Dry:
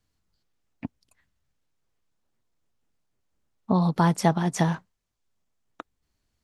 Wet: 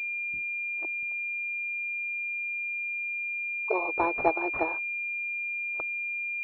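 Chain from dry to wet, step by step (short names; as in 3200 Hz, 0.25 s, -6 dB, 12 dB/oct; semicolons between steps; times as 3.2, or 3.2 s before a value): 0.85–3.74 formant sharpening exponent 3; spectral noise reduction 20 dB; upward compressor, threshold -32 dBFS; brick-wall FIR high-pass 310 Hz; pulse-width modulation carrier 2400 Hz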